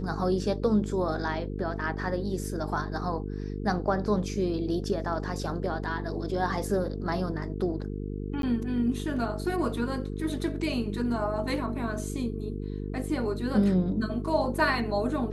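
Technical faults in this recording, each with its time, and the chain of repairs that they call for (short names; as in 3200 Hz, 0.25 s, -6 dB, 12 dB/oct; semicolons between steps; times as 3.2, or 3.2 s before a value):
buzz 50 Hz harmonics 9 -34 dBFS
8.42–8.43 gap 12 ms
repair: de-hum 50 Hz, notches 9; interpolate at 8.42, 12 ms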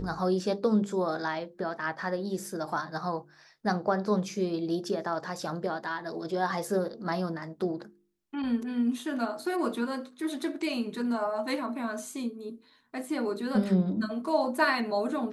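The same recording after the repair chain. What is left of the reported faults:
none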